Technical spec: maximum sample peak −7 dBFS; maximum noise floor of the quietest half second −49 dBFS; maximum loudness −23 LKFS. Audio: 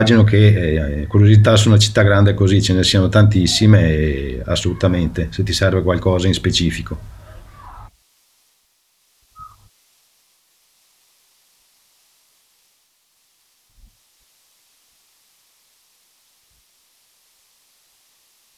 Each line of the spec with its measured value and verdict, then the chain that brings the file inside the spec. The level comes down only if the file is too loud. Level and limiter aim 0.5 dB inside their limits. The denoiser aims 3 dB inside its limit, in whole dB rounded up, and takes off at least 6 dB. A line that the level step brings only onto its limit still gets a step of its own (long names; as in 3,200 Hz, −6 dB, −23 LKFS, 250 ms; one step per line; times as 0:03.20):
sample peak −2.0 dBFS: out of spec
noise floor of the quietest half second −62 dBFS: in spec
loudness −14.5 LKFS: out of spec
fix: level −9 dB